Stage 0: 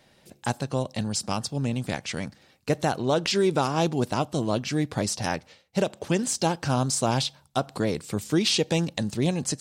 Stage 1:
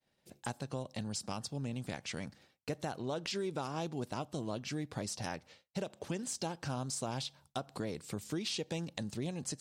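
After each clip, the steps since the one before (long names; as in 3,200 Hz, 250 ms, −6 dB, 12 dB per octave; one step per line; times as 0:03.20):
downward expander −50 dBFS
downward compressor 2.5 to 1, threshold −32 dBFS, peak gain reduction 10 dB
level −6 dB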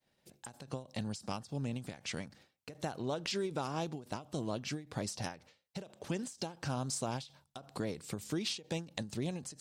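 every ending faded ahead of time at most 170 dB per second
level +1.5 dB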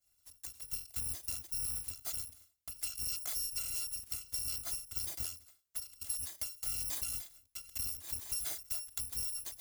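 samples in bit-reversed order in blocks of 256 samples
bass and treble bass +8 dB, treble +7 dB
downward compressor 4 to 1, threshold −31 dBFS, peak gain reduction 6.5 dB
level −3.5 dB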